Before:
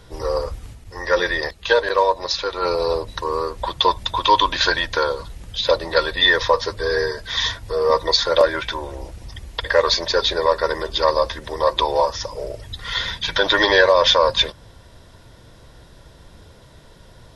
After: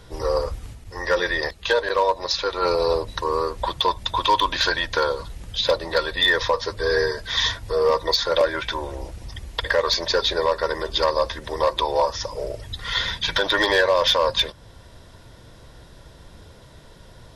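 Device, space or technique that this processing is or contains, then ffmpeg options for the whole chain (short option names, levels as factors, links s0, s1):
limiter into clipper: -af "alimiter=limit=0.398:level=0:latency=1:release=389,asoftclip=type=hard:threshold=0.282"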